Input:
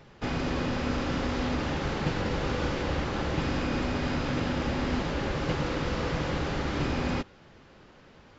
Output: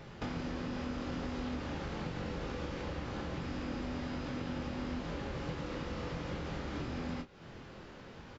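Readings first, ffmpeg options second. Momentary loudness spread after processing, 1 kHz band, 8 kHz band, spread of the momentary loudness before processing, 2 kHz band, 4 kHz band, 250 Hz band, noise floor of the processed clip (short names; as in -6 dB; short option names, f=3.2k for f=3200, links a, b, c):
6 LU, -10.5 dB, n/a, 1 LU, -11.0 dB, -11.0 dB, -8.5 dB, -51 dBFS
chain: -filter_complex "[0:a]acompressor=threshold=-40dB:ratio=10,equalizer=f=140:t=o:w=2.8:g=2.5,asplit=2[a][b];[b]aecho=0:1:24|41:0.501|0.168[c];[a][c]amix=inputs=2:normalize=0,volume=1.5dB"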